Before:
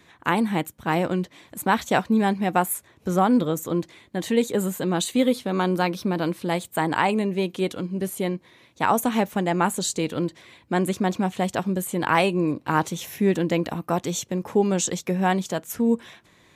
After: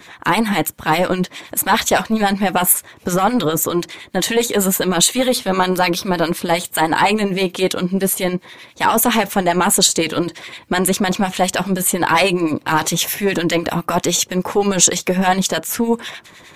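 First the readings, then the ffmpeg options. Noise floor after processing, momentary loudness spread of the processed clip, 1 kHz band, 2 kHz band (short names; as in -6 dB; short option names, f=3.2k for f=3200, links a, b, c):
-44 dBFS, 6 LU, +7.0 dB, +8.5 dB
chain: -filter_complex "[0:a]apsyclip=22.5dB,acrossover=split=1400[a][b];[a]aeval=exprs='val(0)*(1-0.7/2+0.7/2*cos(2*PI*9.8*n/s))':c=same[c];[b]aeval=exprs='val(0)*(1-0.7/2-0.7/2*cos(2*PI*9.8*n/s))':c=same[d];[c][d]amix=inputs=2:normalize=0,lowshelf=f=440:g=-8.5,volume=-3.5dB"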